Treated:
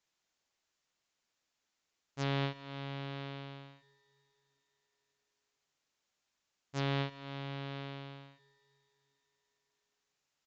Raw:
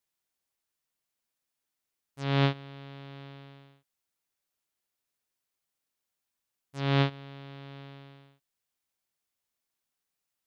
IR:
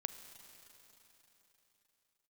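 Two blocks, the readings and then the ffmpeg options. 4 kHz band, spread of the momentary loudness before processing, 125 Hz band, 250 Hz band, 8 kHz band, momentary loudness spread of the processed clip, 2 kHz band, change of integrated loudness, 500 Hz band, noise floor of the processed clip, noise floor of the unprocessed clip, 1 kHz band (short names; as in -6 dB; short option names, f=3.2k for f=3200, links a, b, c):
-5.0 dB, 20 LU, -7.5 dB, -6.5 dB, n/a, 18 LU, -5.0 dB, -10.5 dB, -5.5 dB, -85 dBFS, under -85 dBFS, -5.5 dB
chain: -filter_complex "[0:a]acompressor=threshold=-36dB:ratio=6,asplit=2[a][b];[1:a]atrim=start_sample=2205,lowshelf=f=150:g=-10.5[c];[b][c]afir=irnorm=-1:irlink=0,volume=0dB[d];[a][d]amix=inputs=2:normalize=0,aresample=16000,aresample=44100"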